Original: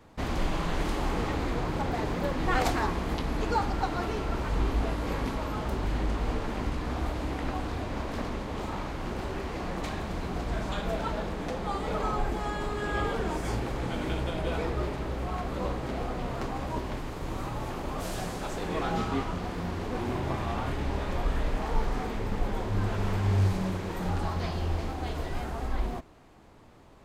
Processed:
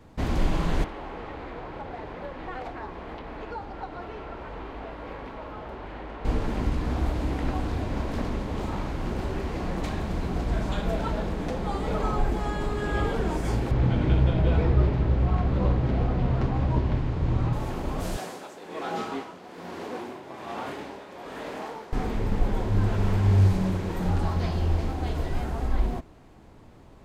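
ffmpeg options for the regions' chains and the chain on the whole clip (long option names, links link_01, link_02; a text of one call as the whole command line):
ffmpeg -i in.wav -filter_complex "[0:a]asettb=1/sr,asplit=3[link_01][link_02][link_03];[link_01]atrim=end=0.844[link_04];[link_02]atrim=start=0.84:end=6.25,asetpts=PTS-STARTPTS,afade=type=in:duration=0.004:curve=qsin,afade=type=out:start_time=5.406:duration=0.004:curve=qsin,acrossover=split=120|240|670|3900[link_05][link_06][link_07][link_08][link_09];[link_05]acompressor=threshold=-37dB:ratio=3[link_10];[link_06]acompressor=threshold=-46dB:ratio=3[link_11];[link_07]acompressor=threshold=-38dB:ratio=3[link_12];[link_08]acompressor=threshold=-43dB:ratio=3[link_13];[link_09]acompressor=threshold=-49dB:ratio=3[link_14];[link_10][link_11][link_12][link_13][link_14]amix=inputs=5:normalize=0,acrossover=split=450 3200:gain=0.251 1 0.0708[link_15][link_16][link_17];[link_15][link_16][link_17]amix=inputs=3:normalize=0[link_18];[link_03]atrim=start=6.246[link_19];[link_04][link_18]acrossfade=duration=0.004:curve1=hsin:curve2=qsin[link_20];[link_20][link_19]acrossfade=duration=0.004:curve1=qsin:curve2=hsin,asettb=1/sr,asplit=3[link_21][link_22][link_23];[link_21]atrim=end=13.714[link_24];[link_22]atrim=start=13.71:end=17.53,asetpts=PTS-STARTPTS,afade=type=in:duration=0.004:curve=qsin,afade=type=out:start_time=3.816:duration=0.004:curve=qsin,lowpass=4300,equalizer=frequency=99:width_type=o:width=1.4:gain=11[link_25];[link_23]atrim=start=17.526[link_26];[link_24][link_25]acrossfade=duration=0.004:curve1=hsin:curve2=qsin[link_27];[link_27][link_26]acrossfade=duration=0.004:curve1=qsin:curve2=hsin,asettb=1/sr,asplit=3[link_28][link_29][link_30];[link_28]atrim=end=18.174[link_31];[link_29]atrim=start=18.17:end=21.93,asetpts=PTS-STARTPTS,afade=type=in:duration=0.004:curve=qsin,afade=type=out:start_time=3.756:duration=0.004:curve=qsin,highpass=350,tremolo=f=1.2:d=0.66[link_32];[link_30]atrim=start=21.926[link_33];[link_31][link_32]acrossfade=duration=0.004:curve1=hsin:curve2=qsin[link_34];[link_34][link_33]acrossfade=duration=0.004:curve1=qsin:curve2=hsin,lowshelf=frequency=390:gain=6,bandreject=frequency=1200:width=29" out.wav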